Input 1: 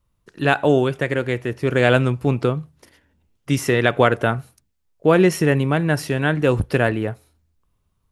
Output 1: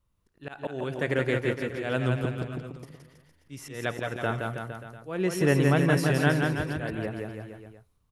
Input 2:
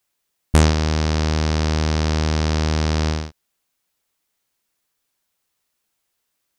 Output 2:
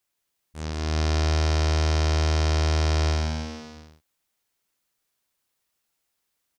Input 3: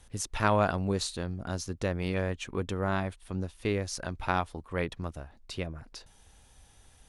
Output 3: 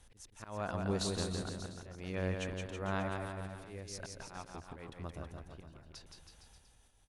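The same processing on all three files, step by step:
volume swells 455 ms
bouncing-ball delay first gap 170 ms, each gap 0.9×, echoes 5
level −5 dB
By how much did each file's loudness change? −8.5, −4.0, −8.0 LU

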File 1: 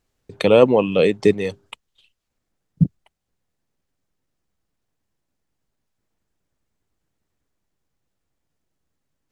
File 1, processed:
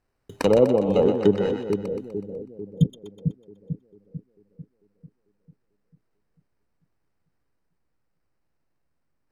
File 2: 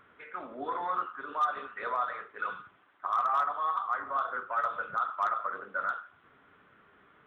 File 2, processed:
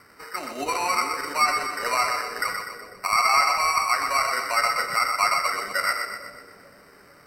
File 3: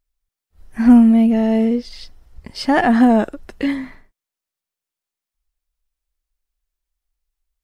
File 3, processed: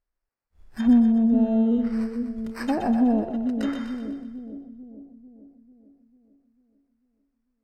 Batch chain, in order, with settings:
decimation without filtering 13×
treble cut that deepens with the level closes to 560 Hz, closed at −10.5 dBFS
echo with a time of its own for lows and highs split 500 Hz, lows 445 ms, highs 124 ms, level −6 dB
loudness normalisation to −23 LKFS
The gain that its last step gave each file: −3.0, +7.5, −7.5 decibels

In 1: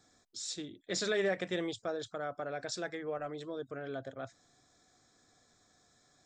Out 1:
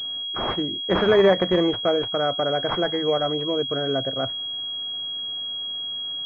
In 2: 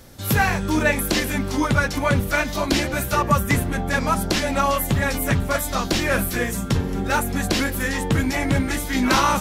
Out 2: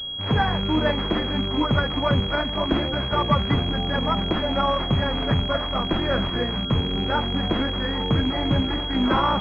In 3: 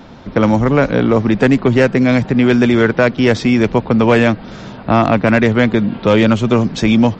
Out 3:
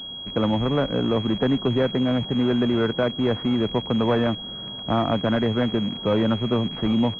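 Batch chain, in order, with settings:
loose part that buzzes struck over −27 dBFS, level −15 dBFS
switching amplifier with a slow clock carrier 3,300 Hz
loudness normalisation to −23 LKFS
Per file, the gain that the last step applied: +15.5, −1.0, −9.5 decibels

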